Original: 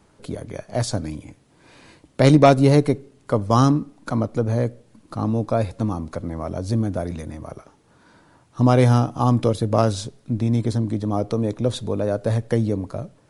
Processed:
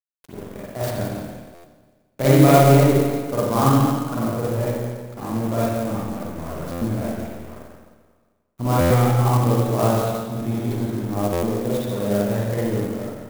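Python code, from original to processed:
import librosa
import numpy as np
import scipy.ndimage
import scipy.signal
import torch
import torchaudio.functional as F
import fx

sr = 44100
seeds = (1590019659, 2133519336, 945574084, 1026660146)

y = fx.high_shelf(x, sr, hz=6200.0, db=10.0)
y = fx.hum_notches(y, sr, base_hz=50, count=5)
y = np.sign(y) * np.maximum(np.abs(y) - 10.0 ** (-33.5 / 20.0), 0.0)
y = y + 10.0 ** (-10.5 / 20.0) * np.pad(y, (int(172 * sr / 1000.0), 0))[:len(y)]
y = fx.rev_spring(y, sr, rt60_s=1.5, pass_ms=(44, 49, 59), chirp_ms=30, drr_db=-9.0)
y = fx.buffer_glitch(y, sr, at_s=(1.54, 6.71, 8.8, 11.32), block=512, repeats=8)
y = fx.clock_jitter(y, sr, seeds[0], jitter_ms=0.041)
y = F.gain(torch.from_numpy(y), -8.0).numpy()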